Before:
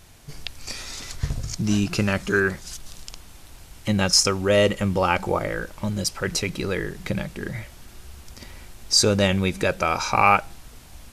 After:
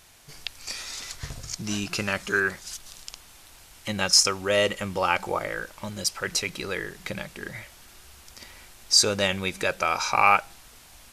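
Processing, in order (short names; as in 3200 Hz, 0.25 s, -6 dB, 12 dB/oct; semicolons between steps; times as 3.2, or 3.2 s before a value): low shelf 430 Hz -12 dB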